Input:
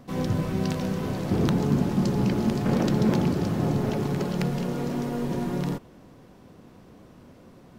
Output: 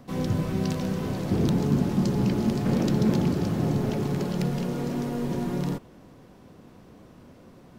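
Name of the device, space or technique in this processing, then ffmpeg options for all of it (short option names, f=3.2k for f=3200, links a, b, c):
one-band saturation: -filter_complex "[0:a]acrossover=split=460|2900[a][b][c];[b]asoftclip=type=tanh:threshold=-33.5dB[d];[a][d][c]amix=inputs=3:normalize=0"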